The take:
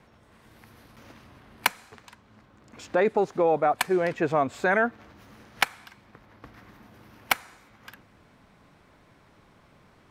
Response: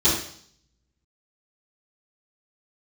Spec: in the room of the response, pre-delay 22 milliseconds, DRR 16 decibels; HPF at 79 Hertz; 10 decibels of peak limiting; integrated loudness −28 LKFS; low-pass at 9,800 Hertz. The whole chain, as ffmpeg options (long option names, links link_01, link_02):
-filter_complex "[0:a]highpass=79,lowpass=9800,alimiter=limit=-16dB:level=0:latency=1,asplit=2[link_01][link_02];[1:a]atrim=start_sample=2205,adelay=22[link_03];[link_02][link_03]afir=irnorm=-1:irlink=0,volume=-32dB[link_04];[link_01][link_04]amix=inputs=2:normalize=0,volume=0.5dB"